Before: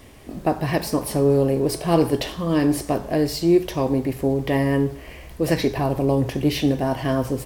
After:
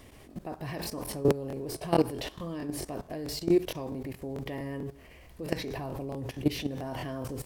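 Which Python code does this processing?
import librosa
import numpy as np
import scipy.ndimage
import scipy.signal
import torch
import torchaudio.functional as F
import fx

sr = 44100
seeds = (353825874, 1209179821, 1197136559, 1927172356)

y = fx.level_steps(x, sr, step_db=16)
y = fx.buffer_crackle(y, sr, first_s=0.82, period_s=0.22, block=1024, kind='repeat')
y = y * librosa.db_to_amplitude(-4.0)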